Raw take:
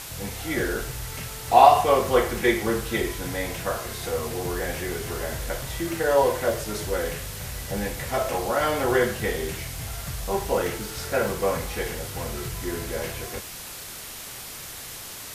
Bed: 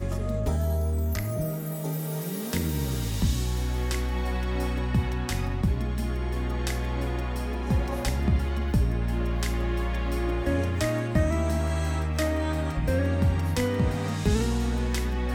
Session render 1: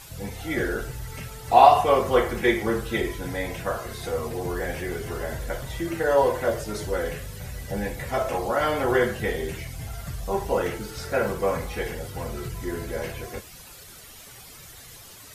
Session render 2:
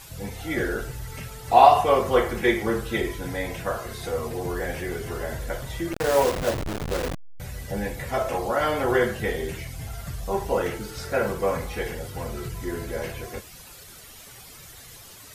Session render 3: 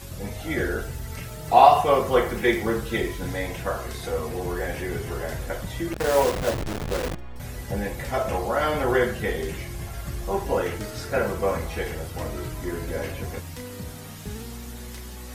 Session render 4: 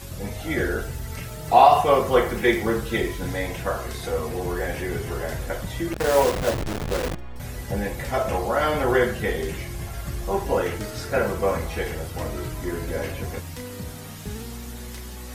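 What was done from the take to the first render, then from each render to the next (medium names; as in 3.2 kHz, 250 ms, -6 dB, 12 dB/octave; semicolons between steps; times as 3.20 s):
noise reduction 11 dB, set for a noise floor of -39 dBFS
5.93–7.40 s: send-on-delta sampling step -22.5 dBFS
add bed -12 dB
trim +1.5 dB; peak limiter -3 dBFS, peak gain reduction 2.5 dB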